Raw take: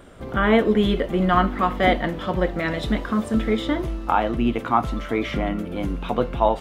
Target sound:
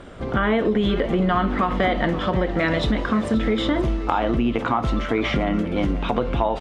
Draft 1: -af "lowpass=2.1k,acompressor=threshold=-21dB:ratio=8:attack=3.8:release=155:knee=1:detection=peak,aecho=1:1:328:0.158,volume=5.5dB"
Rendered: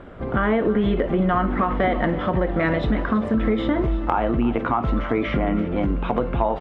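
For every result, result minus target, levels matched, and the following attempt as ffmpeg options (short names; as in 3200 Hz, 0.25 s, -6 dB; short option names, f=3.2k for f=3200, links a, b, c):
8000 Hz band -17.0 dB; echo 0.201 s early
-af "lowpass=6.2k,acompressor=threshold=-21dB:ratio=8:attack=3.8:release=155:knee=1:detection=peak,aecho=1:1:328:0.158,volume=5.5dB"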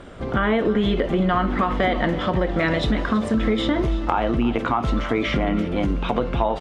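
echo 0.201 s early
-af "lowpass=6.2k,acompressor=threshold=-21dB:ratio=8:attack=3.8:release=155:knee=1:detection=peak,aecho=1:1:529:0.158,volume=5.5dB"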